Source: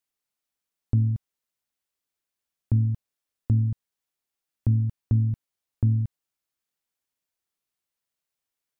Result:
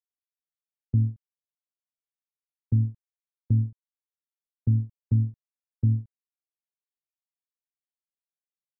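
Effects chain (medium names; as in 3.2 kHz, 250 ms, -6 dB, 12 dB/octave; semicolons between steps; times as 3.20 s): gate -22 dBFS, range -35 dB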